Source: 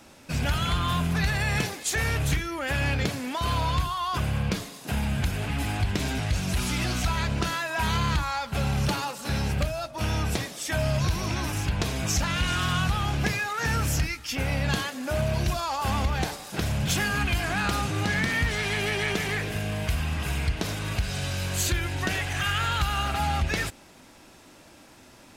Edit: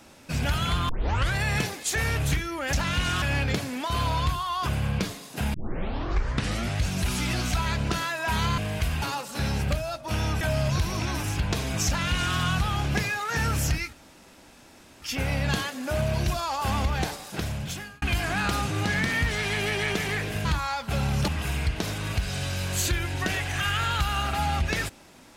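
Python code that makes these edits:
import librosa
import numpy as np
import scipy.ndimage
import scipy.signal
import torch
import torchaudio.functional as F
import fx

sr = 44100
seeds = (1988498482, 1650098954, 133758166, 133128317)

y = fx.edit(x, sr, fx.tape_start(start_s=0.89, length_s=0.47),
    fx.tape_start(start_s=5.05, length_s=1.24),
    fx.swap(start_s=8.09, length_s=0.83, other_s=19.65, other_length_s=0.44),
    fx.cut(start_s=10.31, length_s=0.39),
    fx.duplicate(start_s=12.16, length_s=0.49, to_s=2.73),
    fx.insert_room_tone(at_s=14.22, length_s=1.09),
    fx.fade_out_span(start_s=16.43, length_s=0.79), tone=tone)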